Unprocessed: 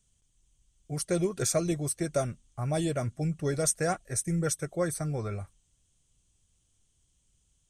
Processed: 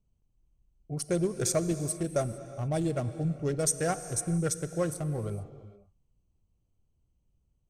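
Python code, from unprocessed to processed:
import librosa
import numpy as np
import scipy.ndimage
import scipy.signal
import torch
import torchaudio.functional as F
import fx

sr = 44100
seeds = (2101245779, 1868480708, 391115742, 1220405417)

y = fx.wiener(x, sr, points=25)
y = fx.rev_gated(y, sr, seeds[0], gate_ms=480, shape='flat', drr_db=11.5)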